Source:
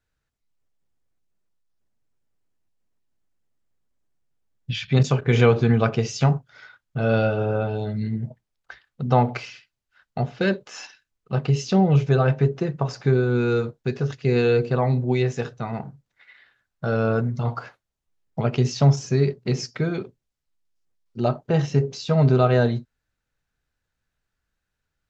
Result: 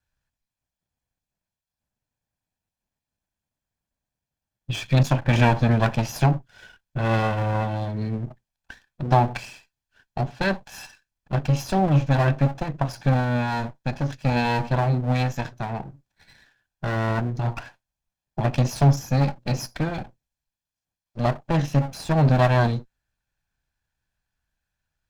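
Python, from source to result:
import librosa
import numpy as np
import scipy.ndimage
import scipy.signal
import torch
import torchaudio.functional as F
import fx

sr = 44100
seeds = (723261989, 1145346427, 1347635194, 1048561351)

y = fx.lower_of_two(x, sr, delay_ms=1.2)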